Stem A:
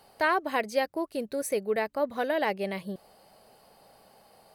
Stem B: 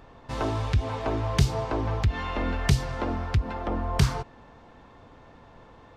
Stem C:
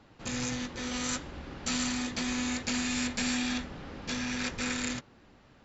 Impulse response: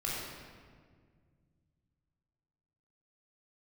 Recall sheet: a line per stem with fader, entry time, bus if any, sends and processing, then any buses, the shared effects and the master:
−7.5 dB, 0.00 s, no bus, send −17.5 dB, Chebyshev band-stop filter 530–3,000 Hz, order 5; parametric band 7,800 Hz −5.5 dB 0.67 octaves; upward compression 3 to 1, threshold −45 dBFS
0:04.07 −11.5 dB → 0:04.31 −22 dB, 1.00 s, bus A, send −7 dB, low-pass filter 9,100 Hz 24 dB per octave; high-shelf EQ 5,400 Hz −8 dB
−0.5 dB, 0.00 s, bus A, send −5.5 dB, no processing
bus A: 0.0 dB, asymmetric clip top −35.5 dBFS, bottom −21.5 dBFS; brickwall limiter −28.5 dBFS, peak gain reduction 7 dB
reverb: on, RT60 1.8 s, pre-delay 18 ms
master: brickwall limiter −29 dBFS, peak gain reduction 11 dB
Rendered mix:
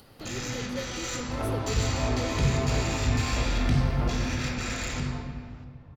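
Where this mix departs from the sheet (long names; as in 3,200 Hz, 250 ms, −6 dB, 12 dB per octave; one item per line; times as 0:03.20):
stem B −11.5 dB → −2.5 dB
master: missing brickwall limiter −29 dBFS, peak gain reduction 11 dB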